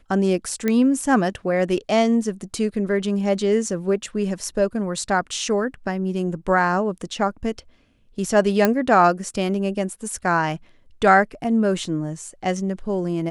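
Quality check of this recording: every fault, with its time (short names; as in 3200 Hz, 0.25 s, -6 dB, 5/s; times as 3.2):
0.68 pop -9 dBFS
8.65 pop -4 dBFS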